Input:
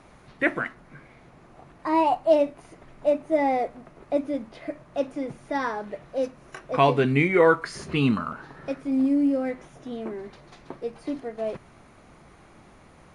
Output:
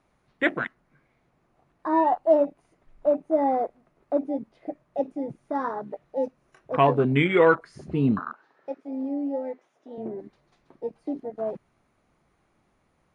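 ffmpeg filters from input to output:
-filter_complex "[0:a]afwtdn=0.0398,asettb=1/sr,asplit=3[a][b][c];[a]atrim=end=8.194[d];[b]atrim=start=8.19:end=9.98,asetpts=PTS-STARTPTS,afade=t=in:d=0.004:c=qsin,afade=t=out:st=1.786:d=0.004:c=qsin,highpass=420,lowpass=6.7k[e];[c]atrim=start=9.976[f];[d][e]acrossfade=d=0.004:c1=hsin:c2=qsin[g];[g][f]acrossfade=d=0.004:c1=qsin:c2=hsin"

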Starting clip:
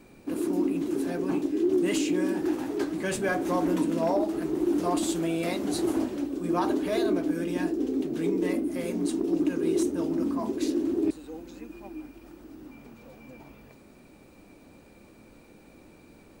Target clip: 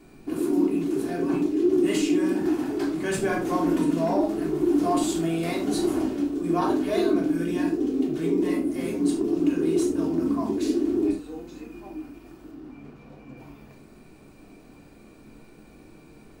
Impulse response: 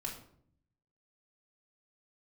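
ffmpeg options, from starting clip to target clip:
-filter_complex "[0:a]asettb=1/sr,asplit=3[a][b][c];[a]atrim=end=12.514[d];[b]atrim=start=12.51:end=13.37,asetpts=PTS-STARTPTS,afade=t=in:d=0.004:c=qsin,afade=t=out:st=0.856:d=0.004:c=qsin,lowpass=f=3.5k:p=1[e];[c]atrim=start=13.366[f];[d][e]acrossfade=d=0.004:c1=hsin:c2=qsin[g];[g][f]acrossfade=d=0.004:c1=qsin:c2=hsin[h];[1:a]atrim=start_sample=2205,afade=t=out:st=0.15:d=0.01,atrim=end_sample=7056[i];[h][i]afir=irnorm=-1:irlink=0,volume=2.5dB"

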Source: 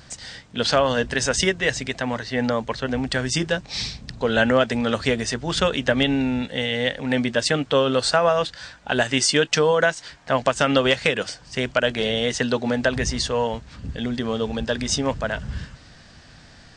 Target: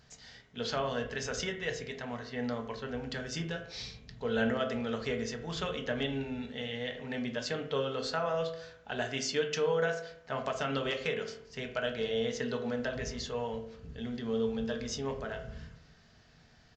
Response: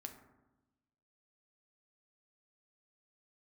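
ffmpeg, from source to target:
-filter_complex "[0:a]aresample=16000,aresample=44100[a];[1:a]atrim=start_sample=2205,asetrate=74970,aresample=44100[b];[a][b]afir=irnorm=-1:irlink=0,volume=-5dB"

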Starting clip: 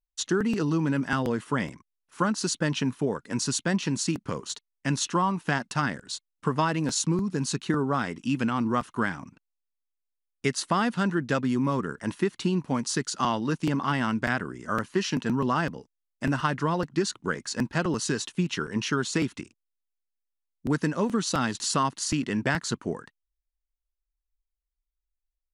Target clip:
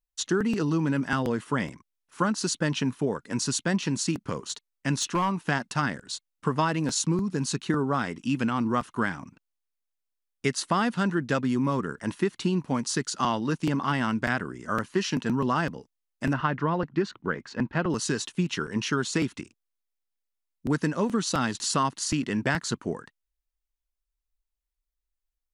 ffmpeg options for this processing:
-filter_complex "[0:a]asettb=1/sr,asplit=3[a][b][c];[a]atrim=end=4.954[d];[b]atrim=start=4.95:end=5.38,asetpts=PTS-STARTPTS,afade=t=in:d=0.004:c=qsin,afade=t=out:st=0.426:d=0.004:c=qsin,volume=20dB,asoftclip=hard,volume=-20dB[e];[c]atrim=start=5.376[f];[d][e]acrossfade=d=0.004:c1=hsin:c2=qsin[g];[g][f]acrossfade=d=0.004:c1=qsin:c2=hsin,asettb=1/sr,asplit=3[h][i][j];[h]atrim=end=16.334[k];[i]atrim=start=16.33:end=17.9,asetpts=PTS-STARTPTS,afade=t=in:d=0.004:c=qsin,afade=t=out:st=1.566:d=0.004:c=qsin,lowpass=2.7k[l];[j]atrim=start=17.896[m];[k][l]acrossfade=d=0.004:c1=hsin:c2=qsin[n];[n][m]acrossfade=d=0.004:c1=qsin:c2=hsin"

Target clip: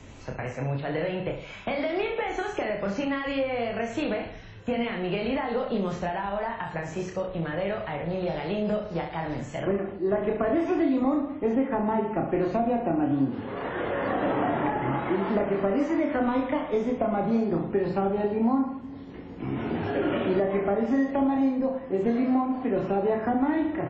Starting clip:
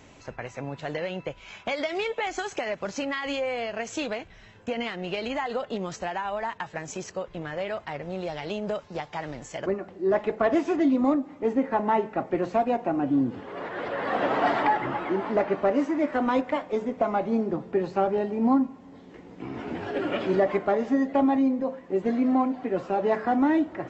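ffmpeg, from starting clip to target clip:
-filter_complex "[0:a]acrossover=split=3100[a][b];[b]acompressor=threshold=-52dB:ratio=4:attack=1:release=60[c];[a][c]amix=inputs=2:normalize=0,asettb=1/sr,asplit=3[d][e][f];[d]atrim=end=15.084[g];[e]atrim=start=15.08:end=17.66,asetpts=PTS-STARTPTS,afade=t=in:d=0.004:c=qsin,afade=t=out:st=2.576:d=0.004:c=qsin,highshelf=f=2.9k:g=4[h];[f]atrim=start=17.656[i];[g][h]acrossfade=d=0.004:c1=hsin:c2=qsin[j];[j][i]acrossfade=d=0.004:c1=qsin:c2=hsin,aecho=1:1:30|66|109.2|161|223.2:0.631|0.398|0.251|0.158|0.1,acrossover=split=92|460[k][l][m];[k]acompressor=threshold=-56dB:ratio=4[n];[l]acompressor=threshold=-28dB:ratio=4[o];[m]acompressor=threshold=-29dB:ratio=4[p];[n][o][p]amix=inputs=3:normalize=0,lowshelf=f=160:g=11.5" -ar 22050 -c:a wmav2 -b:a 32k

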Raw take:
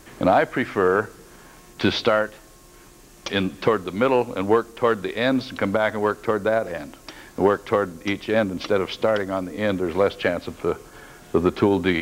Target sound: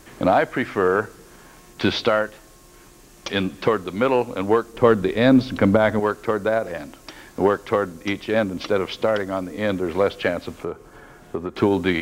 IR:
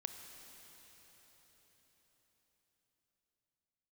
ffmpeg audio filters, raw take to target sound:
-filter_complex "[0:a]asettb=1/sr,asplit=3[a][b][c];[a]atrim=end=4.744[d];[b]atrim=start=4.74:end=6,asetpts=PTS-STARTPTS,afade=t=in:d=0.004:c=qsin,afade=t=out:st=1.256:d=0.004:c=qsin,lowshelf=f=480:g=10[e];[c]atrim=start=5.996[f];[d][e]acrossfade=d=0.004:c1=hsin:c2=qsin[g];[g][f]acrossfade=d=0.004:c1=qsin:c2=hsin,asettb=1/sr,asplit=3[h][i][j];[h]atrim=end=10.634[k];[i]atrim=start=10.63:end=11.56,asetpts=PTS-STARTPTS,afade=t=in:d=0.004:c=qsin,afade=t=out:st=0.926:d=0.004:c=qsin,acrossover=split=530|1900[l][m][n];[l]acompressor=threshold=-28dB:ratio=4[o];[m]acompressor=threshold=-35dB:ratio=4[p];[n]acompressor=threshold=-58dB:ratio=4[q];[o][p][q]amix=inputs=3:normalize=0[r];[j]atrim=start=11.556[s];[k][r]acrossfade=d=0.004:c1=hsin:c2=qsin[t];[t][s]acrossfade=d=0.004:c1=qsin:c2=hsin"

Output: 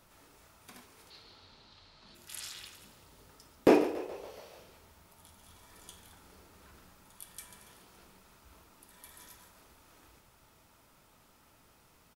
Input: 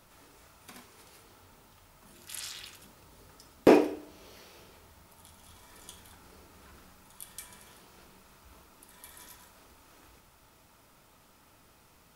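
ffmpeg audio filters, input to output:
-filter_complex "[0:a]asettb=1/sr,asplit=3[a][b][c];[a]atrim=end=1.104[d];[b]atrim=start=1.1:end=2.15,asetpts=PTS-STARTPTS,afade=t=in:d=0.004:c=qsin,afade=t=out:st=1.046:d=0.004:c=qsin,lowpass=f=4.2k:t=q:w=6[e];[c]atrim=start=2.146[f];[d][e]acrossfade=d=0.004:c1=hsin:c2=qsin[g];[g][f]acrossfade=d=0.004:c1=qsin:c2=hsin,asplit=7[h][i][j][k][l][m][n];[i]adelay=141,afreqshift=34,volume=-14.5dB[o];[j]adelay=282,afreqshift=68,volume=-18.9dB[p];[k]adelay=423,afreqshift=102,volume=-23.4dB[q];[l]adelay=564,afreqshift=136,volume=-27.8dB[r];[m]adelay=705,afreqshift=170,volume=-32.2dB[s];[n]adelay=846,afreqshift=204,volume=-36.7dB[t];[h][o][p][q][r][s][t]amix=inputs=7:normalize=0,volume=-3dB"

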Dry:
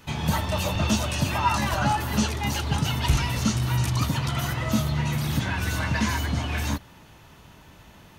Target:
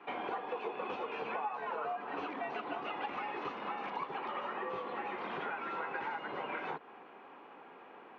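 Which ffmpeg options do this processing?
-af "afreqshift=-130,highpass=f=260:w=0.5412,highpass=f=260:w=1.3066,equalizer=f=400:t=q:w=4:g=5,equalizer=f=600:t=q:w=4:g=-3,equalizer=f=1k:t=q:w=4:g=4,equalizer=f=1.8k:t=q:w=4:g=-5,lowpass=f=2.2k:w=0.5412,lowpass=f=2.2k:w=1.3066,acompressor=threshold=-37dB:ratio=6,volume=1dB"

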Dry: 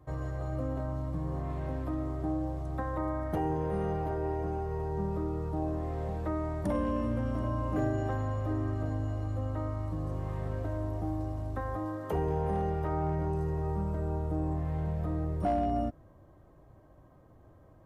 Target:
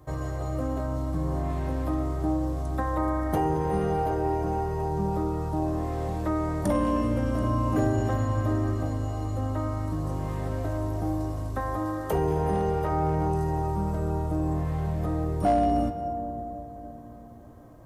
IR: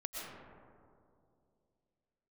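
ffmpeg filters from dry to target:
-filter_complex "[0:a]bass=f=250:g=-2,treble=f=4k:g=8,asplit=2[a][b];[1:a]atrim=start_sample=2205,asetrate=26019,aresample=44100,adelay=20[c];[b][c]afir=irnorm=-1:irlink=0,volume=-13dB[d];[a][d]amix=inputs=2:normalize=0,volume=6dB"

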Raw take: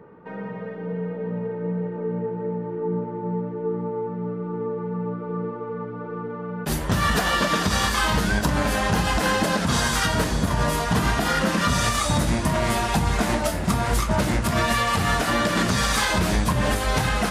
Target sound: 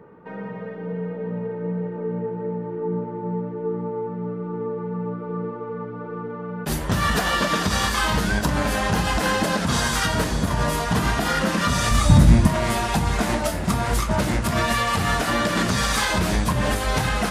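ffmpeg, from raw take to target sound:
-filter_complex "[0:a]asettb=1/sr,asplit=3[a][b][c];[a]atrim=end=11.914[d];[b]atrim=start=11.91:end=12.47,asetpts=PTS-STARTPTS,afade=t=in:d=0.004:c=qsin,afade=t=out:st=0.556:d=0.004:c=qsin,bass=f=250:g=12,treble=f=4k:g=-1[e];[c]atrim=start=12.466[f];[d][e]acrossfade=d=0.004:c1=hsin:c2=qsin[g];[g][f]acrossfade=d=0.004:c1=qsin:c2=hsin"

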